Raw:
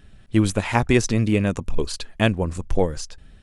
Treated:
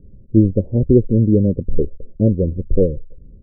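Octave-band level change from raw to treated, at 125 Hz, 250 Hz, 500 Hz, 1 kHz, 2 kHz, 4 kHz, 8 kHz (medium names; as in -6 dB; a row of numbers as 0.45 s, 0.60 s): +6.5 dB, +6.0 dB, +5.5 dB, under -25 dB, under -40 dB, under -40 dB, under -40 dB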